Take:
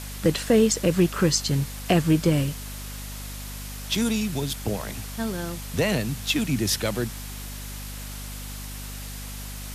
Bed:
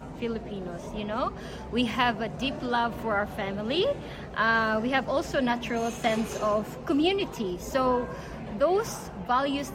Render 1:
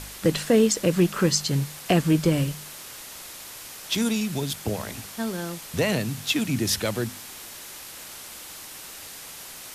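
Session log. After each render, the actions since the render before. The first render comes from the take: de-hum 50 Hz, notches 5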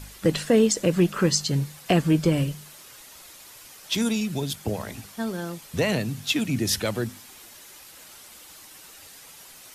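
denoiser 8 dB, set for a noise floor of -41 dBFS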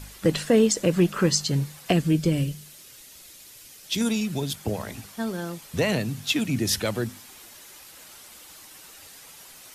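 1.92–4.01 bell 1000 Hz -9.5 dB 1.7 oct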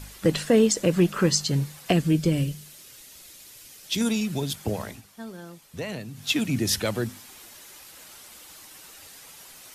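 4.84–6.31 dip -9.5 dB, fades 0.18 s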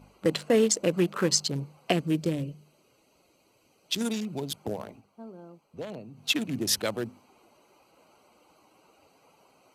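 Wiener smoothing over 25 samples; HPF 360 Hz 6 dB/oct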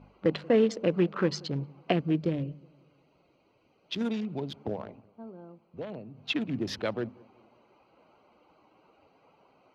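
air absorption 270 m; darkening echo 0.184 s, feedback 48%, low-pass 820 Hz, level -23 dB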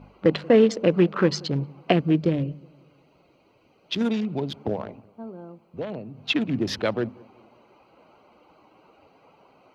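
gain +6.5 dB

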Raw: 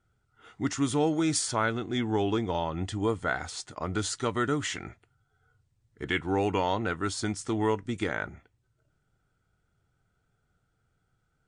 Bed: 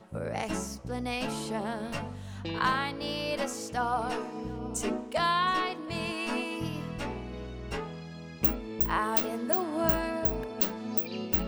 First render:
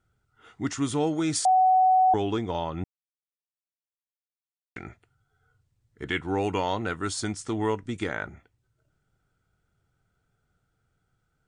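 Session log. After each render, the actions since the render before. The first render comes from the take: 1.45–2.14 bleep 748 Hz -16 dBFS; 2.84–4.76 mute; 6.44–7.28 high shelf 6400 Hz +6 dB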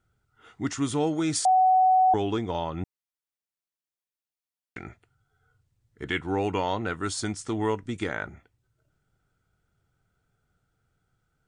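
6.35–6.94 high shelf 7600 Hz -8 dB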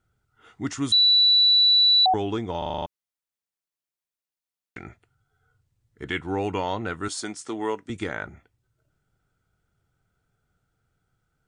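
0.92–2.06 bleep 3950 Hz -14 dBFS; 2.58 stutter in place 0.04 s, 7 plays; 7.08–7.9 HPF 270 Hz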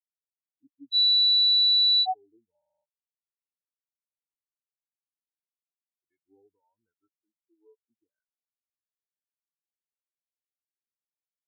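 limiter -17 dBFS, peak gain reduction 3 dB; spectral expander 4:1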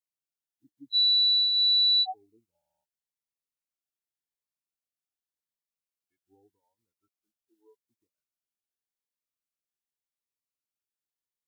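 spectral limiter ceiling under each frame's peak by 13 dB; cascading phaser rising 0.86 Hz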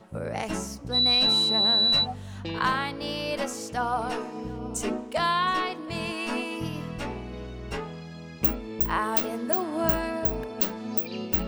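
add bed +2 dB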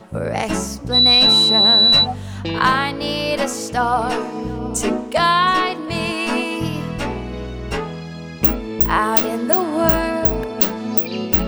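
gain +9.5 dB; limiter -2 dBFS, peak gain reduction 1.5 dB

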